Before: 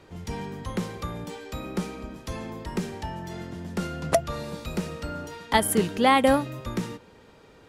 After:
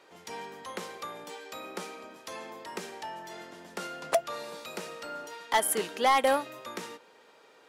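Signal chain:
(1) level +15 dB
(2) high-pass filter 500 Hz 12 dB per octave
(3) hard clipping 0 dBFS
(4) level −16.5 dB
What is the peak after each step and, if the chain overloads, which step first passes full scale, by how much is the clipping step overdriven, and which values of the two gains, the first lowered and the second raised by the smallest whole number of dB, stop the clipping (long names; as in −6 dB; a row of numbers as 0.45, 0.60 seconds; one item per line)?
+7.5, +10.0, 0.0, −16.5 dBFS
step 1, 10.0 dB
step 1 +5 dB, step 4 −6.5 dB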